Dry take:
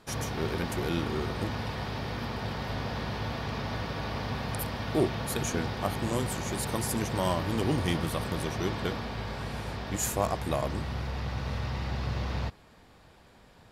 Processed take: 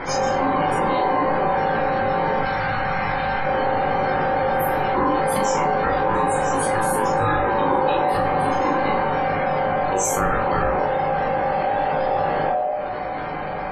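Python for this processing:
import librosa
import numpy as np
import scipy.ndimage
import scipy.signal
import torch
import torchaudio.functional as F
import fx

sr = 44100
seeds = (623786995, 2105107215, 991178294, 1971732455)

y = fx.peak_eq(x, sr, hz=64.0, db=7.5, octaves=0.69)
y = fx.clip_asym(y, sr, top_db=-26.0, bottom_db=-18.0)
y = fx.spec_topn(y, sr, count=64)
y = scipy.signal.sosfilt(scipy.signal.butter(2, 45.0, 'highpass', fs=sr, output='sos'), y)
y = fx.room_shoebox(y, sr, seeds[0], volume_m3=50.0, walls='mixed', distance_m=0.69)
y = y * np.sin(2.0 * np.pi * 670.0 * np.arange(len(y)) / sr)
y = fx.peak_eq(y, sr, hz=410.0, db=-12.5, octaves=2.3, at=(2.41, 3.45))
y = fx.room_early_taps(y, sr, ms=(19, 40), db=(-4.0, -3.0))
y = fx.env_flatten(y, sr, amount_pct=70)
y = y * librosa.db_to_amplitude(2.0)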